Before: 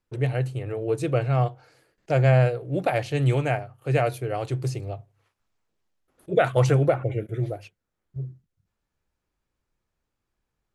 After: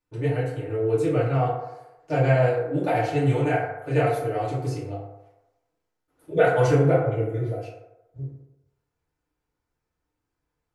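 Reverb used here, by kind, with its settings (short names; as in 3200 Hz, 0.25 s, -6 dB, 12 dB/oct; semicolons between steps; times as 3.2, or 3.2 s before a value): FDN reverb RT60 0.97 s, low-frequency decay 0.7×, high-frequency decay 0.4×, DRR -8.5 dB; gain -8.5 dB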